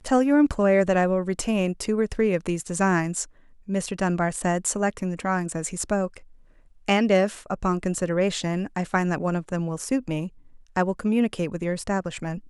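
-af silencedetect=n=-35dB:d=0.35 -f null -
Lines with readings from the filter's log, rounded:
silence_start: 3.24
silence_end: 3.68 | silence_duration: 0.44
silence_start: 6.18
silence_end: 6.88 | silence_duration: 0.70
silence_start: 10.28
silence_end: 10.76 | silence_duration: 0.49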